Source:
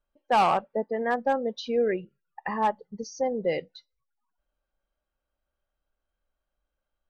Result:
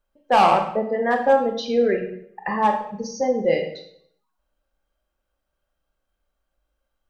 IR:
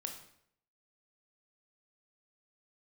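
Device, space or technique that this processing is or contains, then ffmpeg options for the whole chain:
bathroom: -filter_complex "[1:a]atrim=start_sample=2205[a];[0:a][a]afir=irnorm=-1:irlink=0,volume=7.5dB"

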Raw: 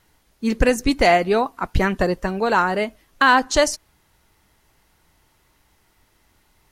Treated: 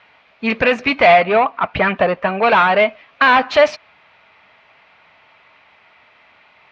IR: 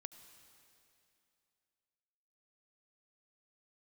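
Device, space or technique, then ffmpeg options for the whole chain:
overdrive pedal into a guitar cabinet: -filter_complex "[0:a]asplit=2[a][b];[b]highpass=f=720:p=1,volume=22dB,asoftclip=type=tanh:threshold=-3.5dB[c];[a][c]amix=inputs=2:normalize=0,lowpass=f=4.7k:p=1,volume=-6dB,highpass=79,equalizer=f=340:t=q:w=4:g=-9,equalizer=f=640:t=q:w=4:g=7,equalizer=f=1.2k:t=q:w=4:g=4,equalizer=f=2.4k:t=q:w=4:g=10,lowpass=f=3.7k:w=0.5412,lowpass=f=3.7k:w=1.3066,asettb=1/sr,asplit=3[d][e][f];[d]atrim=end=1.234[g];[e]atrim=start=1.23:end=2.43,asetpts=PTS-STARTPTS,afade=t=in:d=0.004:c=qsin,afade=t=out:st=1.196:d=0.004:c=qsin,highshelf=f=3.4k:g=-10[h];[f]atrim=start=2.426[i];[g][h]acrossfade=d=0.004:c1=hsin:c2=qsin[j];[j][i]acrossfade=d=0.004:c1=qsin:c2=hsin,volume=-3.5dB"

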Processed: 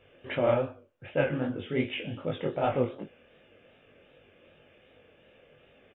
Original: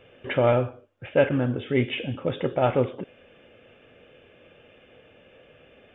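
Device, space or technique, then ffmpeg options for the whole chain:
double-tracked vocal: -filter_complex "[0:a]asplit=2[a][b];[b]adelay=20,volume=-7dB[c];[a][c]amix=inputs=2:normalize=0,flanger=delay=18.5:depth=7.5:speed=2.6,volume=-3dB"

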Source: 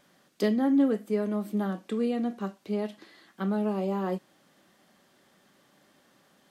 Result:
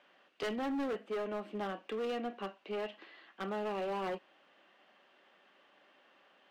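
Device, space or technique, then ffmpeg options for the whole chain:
megaphone: -af "highpass=460,lowpass=2.5k,equalizer=f=2.8k:t=o:w=0.39:g=10,asoftclip=type=hard:threshold=-33dB"

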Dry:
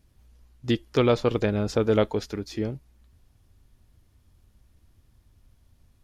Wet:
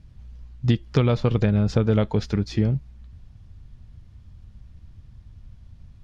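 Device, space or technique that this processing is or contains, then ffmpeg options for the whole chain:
jukebox: -af "lowpass=5.3k,lowshelf=f=230:t=q:w=1.5:g=8,acompressor=threshold=-21dB:ratio=5,volume=5.5dB"

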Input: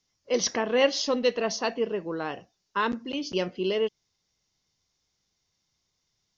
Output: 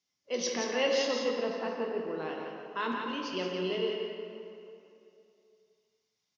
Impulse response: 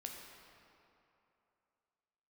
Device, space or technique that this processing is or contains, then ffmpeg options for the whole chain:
PA in a hall: -filter_complex "[0:a]asettb=1/sr,asplit=3[a][b][c];[a]atrim=end=1.224[d];[b]atrim=start=1.22:end=1.97,asetpts=PTS-STARTPTS,afade=t=in:d=0.004:c=qsin,afade=t=out:st=0.746:d=0.004:c=qsin,lowpass=1.7k[e];[c]atrim=start=1.966[f];[d][e]acrossfade=d=0.004:c1=hsin:c2=qsin[g];[g][f]acrossfade=d=0.004:c1=qsin:c2=hsin,highpass=150,equalizer=f=2.7k:t=o:w=0.91:g=3.5,aecho=1:1:172:0.501[h];[1:a]atrim=start_sample=2205[i];[h][i]afir=irnorm=-1:irlink=0,volume=-3.5dB"

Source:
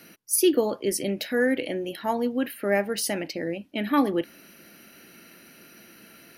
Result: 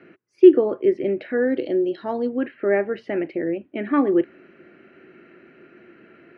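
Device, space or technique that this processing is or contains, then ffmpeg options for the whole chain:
bass cabinet: -filter_complex "[0:a]asettb=1/sr,asplit=3[a][b][c];[a]atrim=end=1.374[d];[b]atrim=start=1.37:end=2.29,asetpts=PTS-STARTPTS,afade=t=in:d=0.004:c=qsin,afade=t=out:st=0.916:d=0.004:c=qsin,highshelf=f=3.3k:t=q:w=3:g=13[e];[c]atrim=start=2.286[f];[d][e]acrossfade=d=0.004:c1=hsin:c2=qsin[g];[g][f]acrossfade=d=0.004:c1=qsin:c2=hsin,highpass=70,equalizer=f=200:t=q:w=4:g=-4,equalizer=f=370:t=q:w=4:g=10,equalizer=f=900:t=q:w=4:g=-5,lowpass=f=2.2k:w=0.5412,lowpass=f=2.2k:w=1.3066,volume=1.5dB"

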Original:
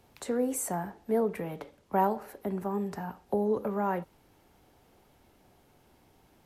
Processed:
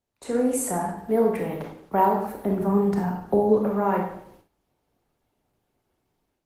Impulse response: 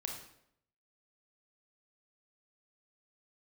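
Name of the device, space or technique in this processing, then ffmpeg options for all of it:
speakerphone in a meeting room: -filter_complex "[0:a]asplit=3[a][b][c];[a]afade=t=out:st=2.24:d=0.02[d];[b]lowshelf=f=380:g=5.5,afade=t=in:st=2.24:d=0.02,afade=t=out:st=3.5:d=0.02[e];[c]afade=t=in:st=3.5:d=0.02[f];[d][e][f]amix=inputs=3:normalize=0[g];[1:a]atrim=start_sample=2205[h];[g][h]afir=irnorm=-1:irlink=0,dynaudnorm=f=180:g=3:m=10.5dB,agate=range=-18dB:threshold=-47dB:ratio=16:detection=peak,volume=-3dB" -ar 48000 -c:a libopus -b:a 20k

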